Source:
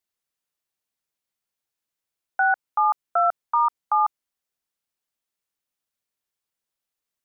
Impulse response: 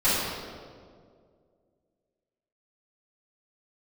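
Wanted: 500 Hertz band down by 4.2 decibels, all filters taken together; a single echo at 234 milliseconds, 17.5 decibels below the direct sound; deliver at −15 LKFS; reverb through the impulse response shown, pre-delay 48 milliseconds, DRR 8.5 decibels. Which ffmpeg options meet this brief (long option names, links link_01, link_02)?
-filter_complex "[0:a]equalizer=frequency=500:width_type=o:gain=-8,aecho=1:1:234:0.133,asplit=2[link_01][link_02];[1:a]atrim=start_sample=2205,adelay=48[link_03];[link_02][link_03]afir=irnorm=-1:irlink=0,volume=-24.5dB[link_04];[link_01][link_04]amix=inputs=2:normalize=0,volume=8.5dB"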